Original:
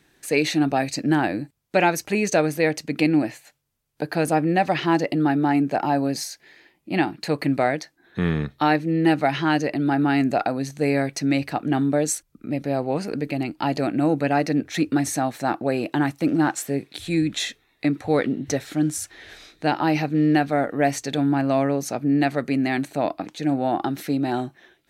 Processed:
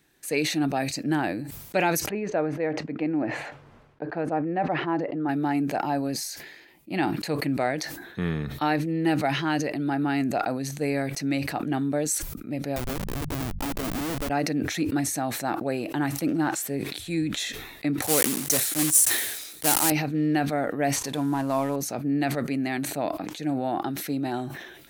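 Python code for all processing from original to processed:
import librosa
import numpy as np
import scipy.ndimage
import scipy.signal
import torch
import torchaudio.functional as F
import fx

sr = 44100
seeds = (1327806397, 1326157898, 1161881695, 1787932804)

y = fx.chain(x, sr, fx.lowpass(hz=1400.0, slope=12),
    fx.low_shelf(hz=140.0, db=-12.0), at=(2.09, 5.29))
y = fx.chain(y, sr, fx.schmitt(flips_db=-25.5),
    fx.hum_notches(base_hz=50, count=4), at=(12.76, 14.3))
y = fx.chain(y, sr, fx.block_float(bits=3),
    fx.highpass(hz=150.0, slope=6),
    fx.peak_eq(hz=10000.0, db=14.5, octaves=1.5), at=(18.02, 19.92))
y = fx.chain(y, sr, fx.cvsd(bps=64000),
    fx.peak_eq(hz=1000.0, db=12.0, octaves=0.24), at=(20.96, 21.76))
y = fx.high_shelf(y, sr, hz=11000.0, db=11.5)
y = fx.sustainer(y, sr, db_per_s=49.0)
y = F.gain(torch.from_numpy(y), -5.5).numpy()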